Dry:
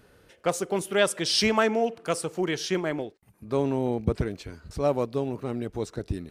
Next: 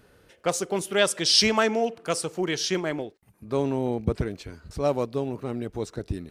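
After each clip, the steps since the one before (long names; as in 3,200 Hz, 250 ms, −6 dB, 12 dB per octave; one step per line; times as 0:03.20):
dynamic equaliser 5,300 Hz, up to +6 dB, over −43 dBFS, Q 0.82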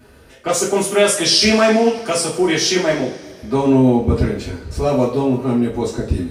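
brickwall limiter −15.5 dBFS, peak gain reduction 8.5 dB
coupled-rooms reverb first 0.37 s, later 2.4 s, from −21 dB, DRR −8.5 dB
level +2 dB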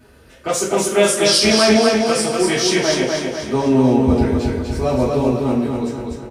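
fade-out on the ending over 0.81 s
on a send: repeating echo 246 ms, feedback 51%, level −3.5 dB
on the sum: level −2 dB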